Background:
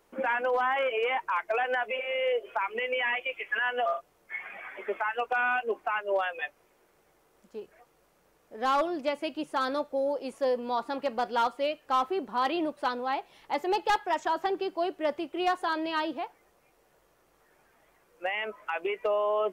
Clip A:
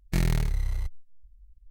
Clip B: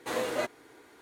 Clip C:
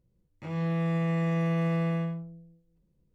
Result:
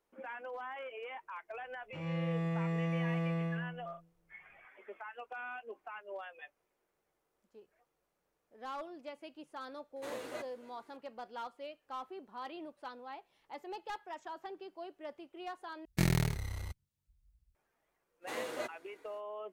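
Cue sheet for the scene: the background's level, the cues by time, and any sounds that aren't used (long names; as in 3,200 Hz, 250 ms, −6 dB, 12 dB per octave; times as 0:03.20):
background −16.5 dB
0:01.51: mix in C −7 dB
0:09.96: mix in B −12 dB + single-tap delay 282 ms −21.5 dB
0:15.85: overwrite with A −1 dB + high-pass filter 100 Hz
0:18.21: mix in B −8 dB, fades 0.05 s + high-pass filter 170 Hz 6 dB per octave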